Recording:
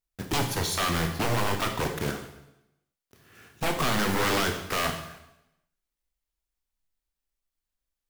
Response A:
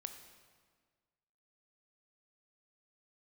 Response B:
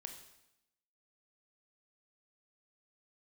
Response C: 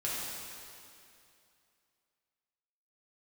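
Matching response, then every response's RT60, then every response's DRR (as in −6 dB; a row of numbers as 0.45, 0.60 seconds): B; 1.6, 0.85, 2.6 seconds; 7.0, 4.5, −7.5 decibels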